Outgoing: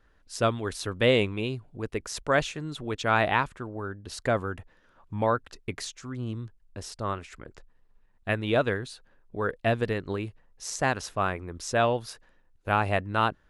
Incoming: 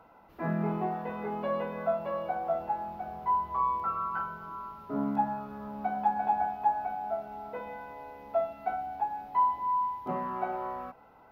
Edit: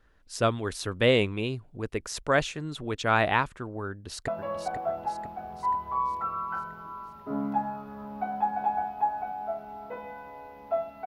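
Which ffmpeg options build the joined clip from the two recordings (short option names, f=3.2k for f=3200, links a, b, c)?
-filter_complex "[0:a]apad=whole_dur=11.06,atrim=end=11.06,atrim=end=4.282[a];[1:a]atrim=start=1.908:end=8.69[b];[a][b]acrossfade=d=0.004:c1=hsin:c2=hsin,asplit=2[c][d];[d]afade=t=in:st=3.89:d=0.01,afade=t=out:st=4.28:d=0.01,aecho=0:1:490|980|1470|1960|2450|2940|3430:0.421697|0.231933|0.127563|0.0701598|0.0385879|0.0212233|0.0116728[e];[c][e]amix=inputs=2:normalize=0"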